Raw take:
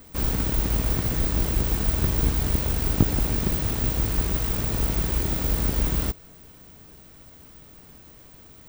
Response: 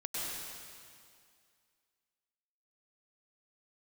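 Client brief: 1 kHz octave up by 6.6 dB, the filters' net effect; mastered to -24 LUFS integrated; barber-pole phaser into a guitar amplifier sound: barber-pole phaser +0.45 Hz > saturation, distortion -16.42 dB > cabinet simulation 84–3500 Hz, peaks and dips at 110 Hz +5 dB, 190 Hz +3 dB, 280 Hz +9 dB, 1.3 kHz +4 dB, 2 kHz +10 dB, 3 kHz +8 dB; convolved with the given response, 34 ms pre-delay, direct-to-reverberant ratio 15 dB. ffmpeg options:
-filter_complex "[0:a]equalizer=f=1000:t=o:g=6,asplit=2[s0][s1];[1:a]atrim=start_sample=2205,adelay=34[s2];[s1][s2]afir=irnorm=-1:irlink=0,volume=0.119[s3];[s0][s3]amix=inputs=2:normalize=0,asplit=2[s4][s5];[s5]afreqshift=0.45[s6];[s4][s6]amix=inputs=2:normalize=1,asoftclip=threshold=0.126,highpass=84,equalizer=f=110:t=q:w=4:g=5,equalizer=f=190:t=q:w=4:g=3,equalizer=f=280:t=q:w=4:g=9,equalizer=f=1300:t=q:w=4:g=4,equalizer=f=2000:t=q:w=4:g=10,equalizer=f=3000:t=q:w=4:g=8,lowpass=f=3500:w=0.5412,lowpass=f=3500:w=1.3066,volume=2"

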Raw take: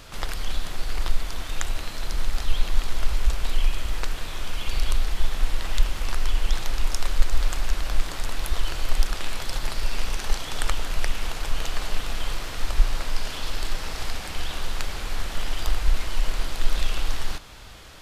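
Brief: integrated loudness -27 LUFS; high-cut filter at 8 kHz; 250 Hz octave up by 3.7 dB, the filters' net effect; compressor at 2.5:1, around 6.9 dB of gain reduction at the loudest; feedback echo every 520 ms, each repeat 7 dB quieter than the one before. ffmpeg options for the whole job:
-af "lowpass=8000,equalizer=f=250:t=o:g=5,acompressor=threshold=0.126:ratio=2.5,aecho=1:1:520|1040|1560|2080|2600:0.447|0.201|0.0905|0.0407|0.0183,volume=1.78"

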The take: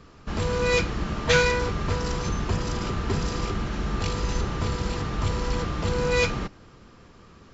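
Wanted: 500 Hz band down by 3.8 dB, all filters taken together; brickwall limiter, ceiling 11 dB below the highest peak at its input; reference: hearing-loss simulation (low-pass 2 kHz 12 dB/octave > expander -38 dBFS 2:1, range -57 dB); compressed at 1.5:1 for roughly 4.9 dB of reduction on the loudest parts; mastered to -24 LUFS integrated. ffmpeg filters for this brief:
-af "equalizer=f=500:t=o:g=-4,acompressor=threshold=0.0282:ratio=1.5,alimiter=limit=0.0668:level=0:latency=1,lowpass=2000,agate=range=0.00141:threshold=0.0126:ratio=2,volume=3.35"

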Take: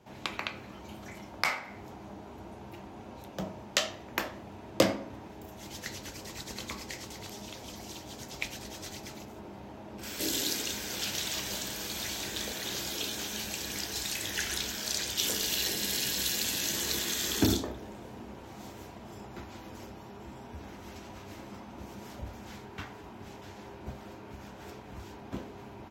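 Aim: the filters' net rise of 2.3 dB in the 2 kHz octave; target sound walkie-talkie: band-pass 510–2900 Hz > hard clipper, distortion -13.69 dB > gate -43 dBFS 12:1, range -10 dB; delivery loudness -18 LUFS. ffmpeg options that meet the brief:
-af "highpass=510,lowpass=2900,equalizer=f=2000:t=o:g=4,asoftclip=type=hard:threshold=0.0841,agate=range=0.316:threshold=0.00708:ratio=12,volume=8.91"

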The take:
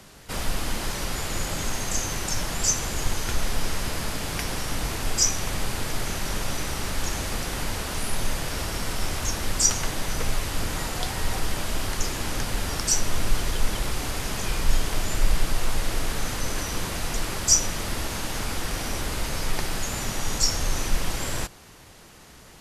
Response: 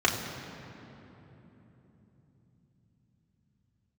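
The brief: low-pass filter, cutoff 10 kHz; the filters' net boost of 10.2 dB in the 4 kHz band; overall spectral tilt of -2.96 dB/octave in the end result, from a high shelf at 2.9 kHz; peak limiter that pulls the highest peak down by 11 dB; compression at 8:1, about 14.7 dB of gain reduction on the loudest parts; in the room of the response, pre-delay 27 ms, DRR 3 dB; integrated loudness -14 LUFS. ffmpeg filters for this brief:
-filter_complex "[0:a]lowpass=10000,highshelf=f=2900:g=7.5,equalizer=f=4000:t=o:g=7,acompressor=threshold=0.0891:ratio=8,alimiter=limit=0.141:level=0:latency=1,asplit=2[s0][s1];[1:a]atrim=start_sample=2205,adelay=27[s2];[s1][s2]afir=irnorm=-1:irlink=0,volume=0.133[s3];[s0][s3]amix=inputs=2:normalize=0,volume=3.76"

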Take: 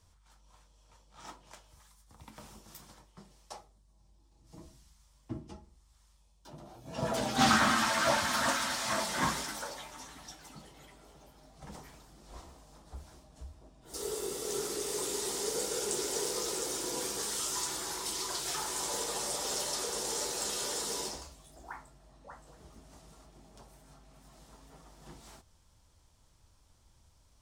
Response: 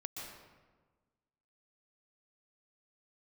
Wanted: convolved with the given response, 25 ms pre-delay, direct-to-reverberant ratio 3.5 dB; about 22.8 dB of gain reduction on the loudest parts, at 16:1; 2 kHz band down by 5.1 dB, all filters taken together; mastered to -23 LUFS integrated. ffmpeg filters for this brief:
-filter_complex "[0:a]equalizer=f=2000:t=o:g=-7,acompressor=threshold=0.00562:ratio=16,asplit=2[s0][s1];[1:a]atrim=start_sample=2205,adelay=25[s2];[s1][s2]afir=irnorm=-1:irlink=0,volume=0.75[s3];[s0][s3]amix=inputs=2:normalize=0,volume=17.8"

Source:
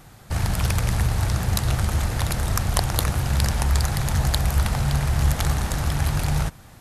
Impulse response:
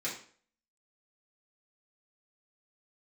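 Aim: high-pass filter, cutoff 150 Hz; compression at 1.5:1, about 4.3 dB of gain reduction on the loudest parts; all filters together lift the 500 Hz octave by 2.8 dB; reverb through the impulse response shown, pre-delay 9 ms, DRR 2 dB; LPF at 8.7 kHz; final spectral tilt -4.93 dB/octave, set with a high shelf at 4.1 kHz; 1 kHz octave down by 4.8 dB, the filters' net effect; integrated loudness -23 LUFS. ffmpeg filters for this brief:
-filter_complex "[0:a]highpass=150,lowpass=8700,equalizer=f=500:t=o:g=6.5,equalizer=f=1000:t=o:g=-9,highshelf=f=4100:g=-3.5,acompressor=threshold=0.0224:ratio=1.5,asplit=2[s0][s1];[1:a]atrim=start_sample=2205,adelay=9[s2];[s1][s2]afir=irnorm=-1:irlink=0,volume=0.501[s3];[s0][s3]amix=inputs=2:normalize=0,volume=2.24"

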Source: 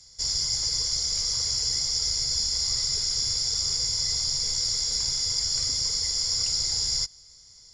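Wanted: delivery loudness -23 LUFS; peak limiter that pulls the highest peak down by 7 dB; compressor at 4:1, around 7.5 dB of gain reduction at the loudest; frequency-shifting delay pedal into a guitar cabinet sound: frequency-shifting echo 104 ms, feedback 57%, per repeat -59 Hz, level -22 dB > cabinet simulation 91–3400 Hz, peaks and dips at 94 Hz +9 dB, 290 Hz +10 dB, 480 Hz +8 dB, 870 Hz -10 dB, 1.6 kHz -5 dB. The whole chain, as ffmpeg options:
-filter_complex "[0:a]acompressor=threshold=0.0251:ratio=4,alimiter=level_in=1.41:limit=0.0631:level=0:latency=1,volume=0.708,asplit=5[s0][s1][s2][s3][s4];[s1]adelay=104,afreqshift=-59,volume=0.0794[s5];[s2]adelay=208,afreqshift=-118,volume=0.0452[s6];[s3]adelay=312,afreqshift=-177,volume=0.0257[s7];[s4]adelay=416,afreqshift=-236,volume=0.0148[s8];[s0][s5][s6][s7][s8]amix=inputs=5:normalize=0,highpass=91,equalizer=f=94:t=q:w=4:g=9,equalizer=f=290:t=q:w=4:g=10,equalizer=f=480:t=q:w=4:g=8,equalizer=f=870:t=q:w=4:g=-10,equalizer=f=1600:t=q:w=4:g=-5,lowpass=f=3400:w=0.5412,lowpass=f=3400:w=1.3066,volume=16.8"

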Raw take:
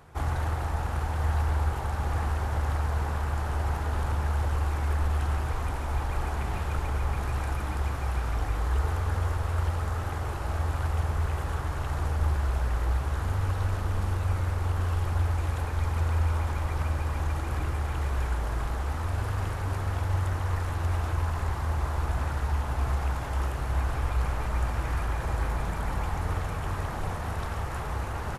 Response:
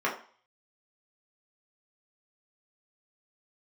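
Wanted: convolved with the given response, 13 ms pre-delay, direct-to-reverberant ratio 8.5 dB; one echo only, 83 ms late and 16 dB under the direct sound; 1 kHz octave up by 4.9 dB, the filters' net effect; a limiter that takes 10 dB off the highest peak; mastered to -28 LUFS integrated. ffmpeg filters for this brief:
-filter_complex "[0:a]equalizer=f=1000:t=o:g=6,alimiter=limit=0.0668:level=0:latency=1,aecho=1:1:83:0.158,asplit=2[s0][s1];[1:a]atrim=start_sample=2205,adelay=13[s2];[s1][s2]afir=irnorm=-1:irlink=0,volume=0.1[s3];[s0][s3]amix=inputs=2:normalize=0,volume=1.68"

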